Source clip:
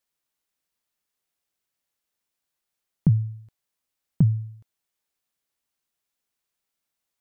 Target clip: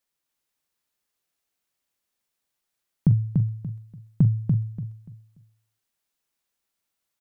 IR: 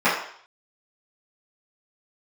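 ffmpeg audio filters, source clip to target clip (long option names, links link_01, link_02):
-filter_complex "[0:a]asplit=2[link_01][link_02];[link_02]adelay=43,volume=-13dB[link_03];[link_01][link_03]amix=inputs=2:normalize=0,aecho=1:1:290|580|870|1160:0.631|0.17|0.046|0.0124"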